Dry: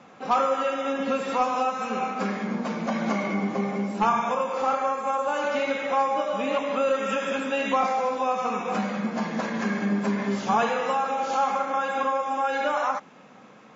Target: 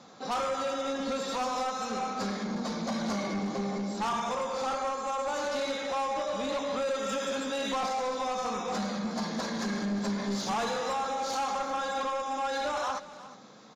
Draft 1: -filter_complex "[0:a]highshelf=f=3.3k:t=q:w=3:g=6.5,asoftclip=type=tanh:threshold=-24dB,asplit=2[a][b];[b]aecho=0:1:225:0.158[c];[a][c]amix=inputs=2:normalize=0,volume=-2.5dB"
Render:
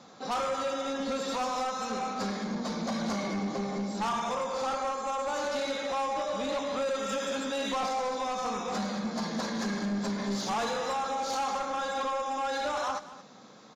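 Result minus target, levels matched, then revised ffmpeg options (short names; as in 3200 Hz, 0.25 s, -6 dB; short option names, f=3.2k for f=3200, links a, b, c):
echo 0.134 s early
-filter_complex "[0:a]highshelf=f=3.3k:t=q:w=3:g=6.5,asoftclip=type=tanh:threshold=-24dB,asplit=2[a][b];[b]aecho=0:1:359:0.158[c];[a][c]amix=inputs=2:normalize=0,volume=-2.5dB"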